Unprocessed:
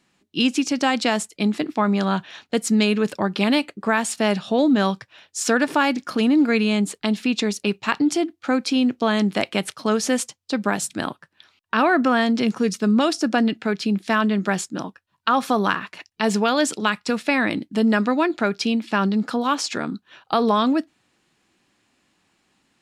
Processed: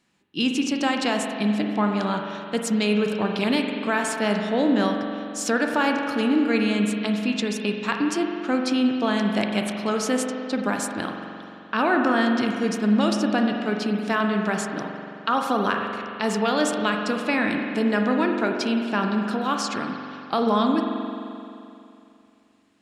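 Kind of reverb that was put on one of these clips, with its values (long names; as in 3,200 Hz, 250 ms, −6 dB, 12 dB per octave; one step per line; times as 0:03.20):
spring reverb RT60 2.7 s, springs 43 ms, chirp 55 ms, DRR 2.5 dB
level −4 dB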